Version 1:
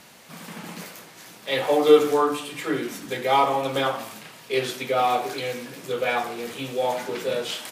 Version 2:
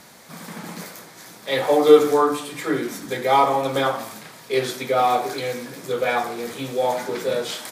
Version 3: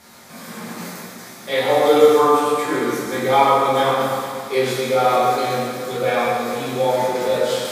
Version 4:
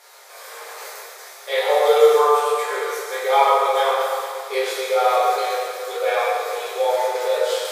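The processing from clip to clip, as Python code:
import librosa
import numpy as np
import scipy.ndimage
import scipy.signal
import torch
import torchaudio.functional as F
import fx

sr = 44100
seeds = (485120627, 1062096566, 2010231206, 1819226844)

y1 = fx.peak_eq(x, sr, hz=2800.0, db=-9.0, octaves=0.34)
y1 = y1 * librosa.db_to_amplitude(3.0)
y2 = fx.rev_fdn(y1, sr, rt60_s=2.4, lf_ratio=0.95, hf_ratio=0.8, size_ms=77.0, drr_db=-7.5)
y2 = y2 * librosa.db_to_amplitude(-4.0)
y3 = fx.brickwall_highpass(y2, sr, low_hz=390.0)
y3 = y3 * librosa.db_to_amplitude(-1.0)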